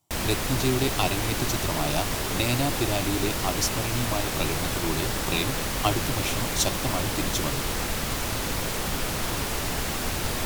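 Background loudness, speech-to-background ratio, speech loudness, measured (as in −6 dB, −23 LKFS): −28.0 LKFS, −1.5 dB, −29.5 LKFS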